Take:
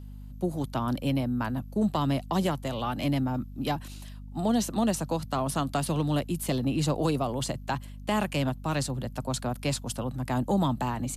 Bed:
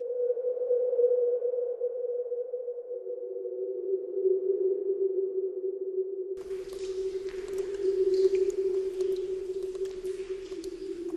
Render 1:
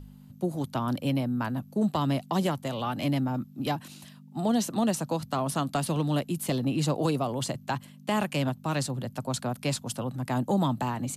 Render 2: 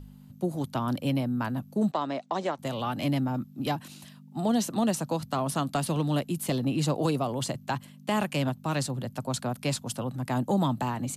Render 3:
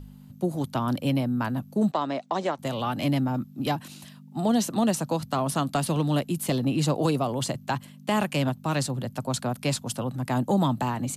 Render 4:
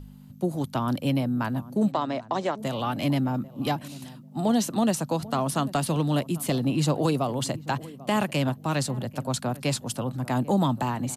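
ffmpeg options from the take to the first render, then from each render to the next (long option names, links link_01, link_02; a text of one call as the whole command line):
ffmpeg -i in.wav -af "bandreject=frequency=50:width_type=h:width=4,bandreject=frequency=100:width_type=h:width=4" out.wav
ffmpeg -i in.wav -filter_complex "[0:a]asettb=1/sr,asplit=3[link_01][link_02][link_03];[link_01]atrim=end=1.914[link_04];[link_02]atrim=start=1.91:end=2.59,asetpts=PTS-STARTPTS,afade=type=in:duration=0.004:curve=qsin,afade=type=out:start_time=0.676:duration=0.004:curve=qsin,highpass=360,equalizer=frequency=630:width_type=q:width=4:gain=3,equalizer=frequency=3000:width_type=q:width=4:gain=-7,equalizer=frequency=4800:width_type=q:width=4:gain=-7,lowpass=frequency=6300:width=0.5412,lowpass=frequency=6300:width=1.3066[link_05];[link_03]atrim=start=2.586[link_06];[link_04][link_05]acrossfade=duration=0.004:curve1=hsin:curve2=qsin[link_07];[link_07][link_06]acrossfade=duration=0.004:curve1=qsin:curve2=hsin" out.wav
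ffmpeg -i in.wav -af "volume=2.5dB" out.wav
ffmpeg -i in.wav -filter_complex "[0:a]asplit=2[link_01][link_02];[link_02]adelay=792,lowpass=frequency=820:poles=1,volume=-17dB,asplit=2[link_03][link_04];[link_04]adelay=792,lowpass=frequency=820:poles=1,volume=0.21[link_05];[link_01][link_03][link_05]amix=inputs=3:normalize=0" out.wav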